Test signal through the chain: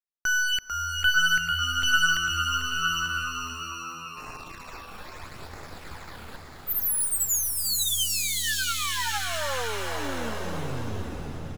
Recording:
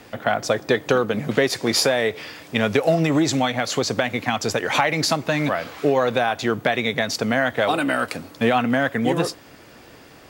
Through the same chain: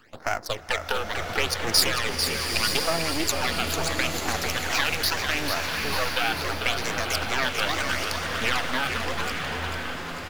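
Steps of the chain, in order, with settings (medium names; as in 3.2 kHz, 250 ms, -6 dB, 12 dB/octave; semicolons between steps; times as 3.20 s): local Wiener filter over 15 samples; half-wave rectifier; tilt shelf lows -9 dB; phase shifter stages 12, 0.76 Hz, lowest notch 100–3600 Hz; frequency-shifting echo 445 ms, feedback 59%, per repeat -84 Hz, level -6.5 dB; swelling reverb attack 1010 ms, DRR 4 dB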